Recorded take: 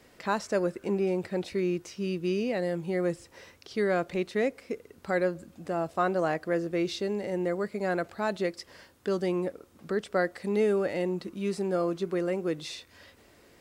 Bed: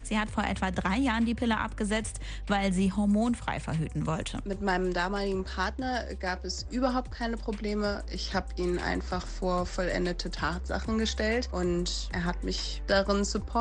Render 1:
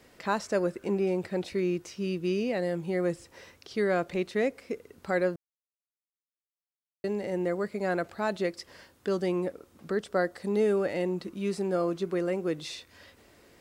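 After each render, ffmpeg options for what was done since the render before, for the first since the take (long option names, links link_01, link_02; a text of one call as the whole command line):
ffmpeg -i in.wav -filter_complex "[0:a]asettb=1/sr,asplit=3[link_01][link_02][link_03];[link_01]atrim=end=10.004[link_04];[link_02]atrim=start=10:end=10.66,asetpts=PTS-STARTPTS,afade=type=in:duration=0.004:curve=qsin,afade=type=out:start_time=0.656:duration=0.004:curve=qsin,equalizer=frequency=2300:width=2.3:gain=-5.5[link_05];[link_03]atrim=start=10.656[link_06];[link_04][link_05]acrossfade=duration=0.004:curve1=hsin:curve2=qsin[link_07];[link_07][link_06]acrossfade=duration=0.004:curve1=qsin:curve2=hsin,asplit=3[link_08][link_09][link_10];[link_08]atrim=end=5.36,asetpts=PTS-STARTPTS,afade=type=out:start_time=5.356:duration=0.004:curve=hsin[link_11];[link_09]atrim=start=5.36:end=7.04,asetpts=PTS-STARTPTS,volume=0[link_12];[link_10]atrim=start=7.04,asetpts=PTS-STARTPTS,afade=type=in:duration=0.004:curve=hsin[link_13];[link_11][link_12][link_13]concat=n=3:v=0:a=1" out.wav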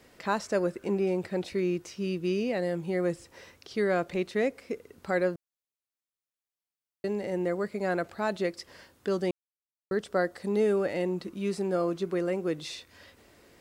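ffmpeg -i in.wav -filter_complex "[0:a]asplit=3[link_01][link_02][link_03];[link_01]atrim=end=9.31,asetpts=PTS-STARTPTS,afade=type=out:start_time=9.306:duration=0.004:curve=hsin[link_04];[link_02]atrim=start=9.31:end=9.91,asetpts=PTS-STARTPTS,volume=0[link_05];[link_03]atrim=start=9.91,asetpts=PTS-STARTPTS,afade=type=in:duration=0.004:curve=hsin[link_06];[link_04][link_05][link_06]concat=n=3:v=0:a=1" out.wav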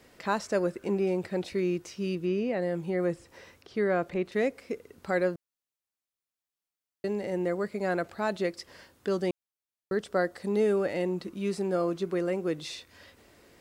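ffmpeg -i in.wav -filter_complex "[0:a]asettb=1/sr,asplit=3[link_01][link_02][link_03];[link_01]atrim=end=2.154[link_04];[link_02]atrim=start=2.15:end=4.32,asetpts=PTS-STARTPTS,afade=type=in:duration=0.004:curve=qsin,afade=type=out:start_time=2.166:duration=0.004:curve=qsin,acrossover=split=2600[link_05][link_06];[link_06]acompressor=threshold=-55dB:ratio=4:attack=1:release=60[link_07];[link_05][link_07]amix=inputs=2:normalize=0[link_08];[link_03]atrim=start=4.316[link_09];[link_04][link_08]acrossfade=duration=0.004:curve1=hsin:curve2=qsin[link_10];[link_10][link_09]acrossfade=duration=0.004:curve1=qsin:curve2=hsin" out.wav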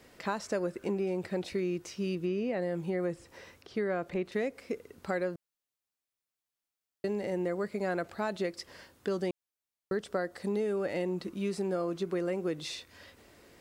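ffmpeg -i in.wav -af "acompressor=threshold=-28dB:ratio=6" out.wav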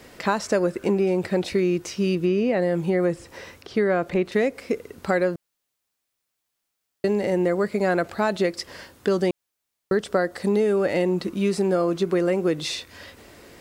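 ffmpeg -i in.wav -af "volume=10.5dB" out.wav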